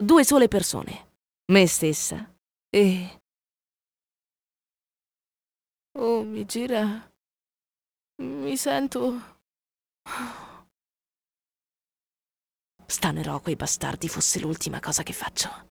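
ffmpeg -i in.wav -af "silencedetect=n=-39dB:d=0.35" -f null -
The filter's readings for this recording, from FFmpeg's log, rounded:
silence_start: 0.99
silence_end: 1.49 | silence_duration: 0.50
silence_start: 2.24
silence_end: 2.73 | silence_duration: 0.49
silence_start: 3.11
silence_end: 5.96 | silence_duration: 2.84
silence_start: 7.00
silence_end: 8.19 | silence_duration: 1.19
silence_start: 9.24
silence_end: 10.06 | silence_duration: 0.83
silence_start: 10.54
silence_end: 12.89 | silence_duration: 2.35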